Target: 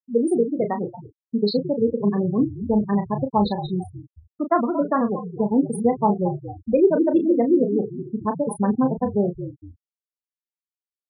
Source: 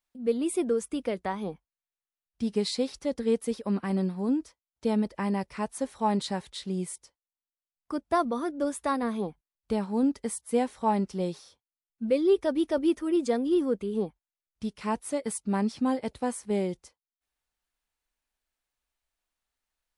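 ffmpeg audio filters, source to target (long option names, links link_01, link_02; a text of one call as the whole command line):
ffmpeg -i in.wav -filter_complex "[0:a]asplit=6[link_01][link_02][link_03][link_04][link_05][link_06];[link_02]adelay=405,afreqshift=-53,volume=-10.5dB[link_07];[link_03]adelay=810,afreqshift=-106,volume=-17.4dB[link_08];[link_04]adelay=1215,afreqshift=-159,volume=-24.4dB[link_09];[link_05]adelay=1620,afreqshift=-212,volume=-31.3dB[link_10];[link_06]adelay=2025,afreqshift=-265,volume=-38.2dB[link_11];[link_01][link_07][link_08][link_09][link_10][link_11]amix=inputs=6:normalize=0,atempo=1.8,afftfilt=real='re*gte(hypot(re,im),0.0501)':imag='im*gte(hypot(re,im),0.0501)':win_size=1024:overlap=0.75,asplit=2[link_12][link_13];[link_13]adelay=34,volume=-8dB[link_14];[link_12][link_14]amix=inputs=2:normalize=0,volume=7dB" out.wav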